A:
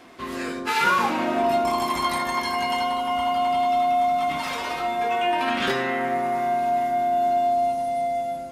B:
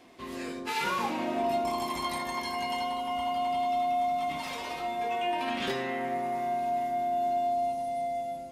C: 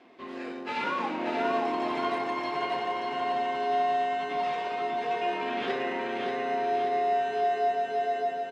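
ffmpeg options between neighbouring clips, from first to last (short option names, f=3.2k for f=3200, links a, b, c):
-af "equalizer=f=1.4k:w=2.3:g=-7.5,volume=-6.5dB"
-filter_complex "[0:a]asplit=2[a][b];[b]acrusher=samples=39:mix=1:aa=0.000001,volume=-7dB[c];[a][c]amix=inputs=2:normalize=0,highpass=280,lowpass=3k,aecho=1:1:583|1166|1749|2332|2915|3498|4081:0.631|0.341|0.184|0.0994|0.0537|0.029|0.0156"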